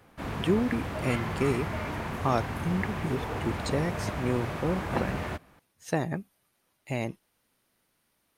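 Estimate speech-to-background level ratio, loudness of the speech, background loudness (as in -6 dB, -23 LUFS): 3.0 dB, -31.5 LUFS, -34.5 LUFS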